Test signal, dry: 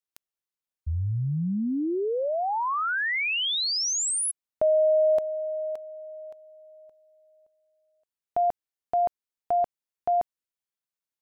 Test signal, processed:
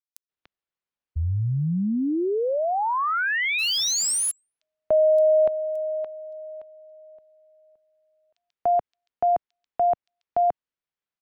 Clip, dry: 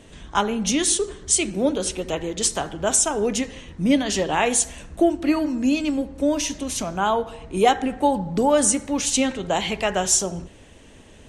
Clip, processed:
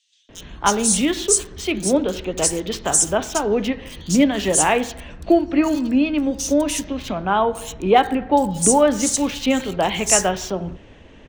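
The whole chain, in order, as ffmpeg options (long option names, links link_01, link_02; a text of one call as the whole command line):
ffmpeg -i in.wav -filter_complex "[0:a]acrossover=split=4300[link_01][link_02];[link_01]adelay=290[link_03];[link_03][link_02]amix=inputs=2:normalize=0,acrossover=split=150|5200[link_04][link_05][link_06];[link_06]acrusher=bits=6:mix=0:aa=0.000001[link_07];[link_04][link_05][link_07]amix=inputs=3:normalize=0,volume=3dB" out.wav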